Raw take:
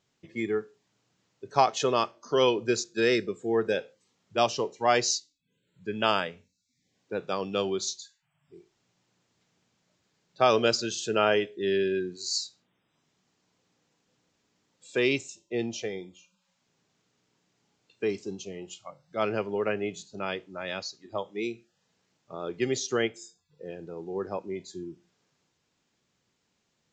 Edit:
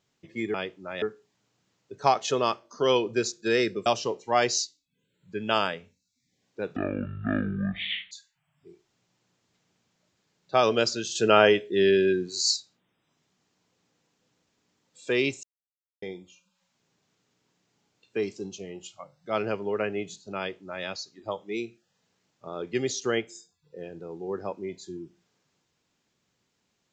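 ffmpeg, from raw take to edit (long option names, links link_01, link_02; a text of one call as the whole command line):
ffmpeg -i in.wav -filter_complex "[0:a]asplit=10[link_01][link_02][link_03][link_04][link_05][link_06][link_07][link_08][link_09][link_10];[link_01]atrim=end=0.542[link_11];[link_02]atrim=start=20.238:end=20.722[link_12];[link_03]atrim=start=0.538:end=3.382[link_13];[link_04]atrim=start=4.388:end=7.294[link_14];[link_05]atrim=start=7.29:end=7.98,asetpts=PTS-STARTPTS,asetrate=22491,aresample=44100[link_15];[link_06]atrim=start=7.976:end=11.022[link_16];[link_07]atrim=start=11.018:end=12.432,asetpts=PTS-STARTPTS,volume=5.5dB[link_17];[link_08]atrim=start=12.428:end=15.3,asetpts=PTS-STARTPTS,afade=type=out:start_time=2.868:duration=0.004:curve=hsin[link_18];[link_09]atrim=start=15.3:end=15.89,asetpts=PTS-STARTPTS,volume=0[link_19];[link_10]atrim=start=15.89,asetpts=PTS-STARTPTS,afade=type=in:duration=0.004:curve=hsin[link_20];[link_11][link_12]acrossfade=duration=0.004:curve1=hsin:curve2=hsin[link_21];[link_21][link_13]acrossfade=duration=0.004:curve1=hsin:curve2=hsin[link_22];[link_22][link_14]acrossfade=duration=0.004:curve1=hsin:curve2=hsin[link_23];[link_23][link_15]acrossfade=duration=0.004:curve1=hsin:curve2=hsin[link_24];[link_24][link_16]acrossfade=duration=0.004:curve1=hsin:curve2=hsin[link_25];[link_25][link_17]acrossfade=duration=0.004:curve1=hsin:curve2=hsin[link_26];[link_18][link_19][link_20]concat=n=3:v=0:a=1[link_27];[link_26][link_27]acrossfade=duration=0.004:curve1=hsin:curve2=hsin" out.wav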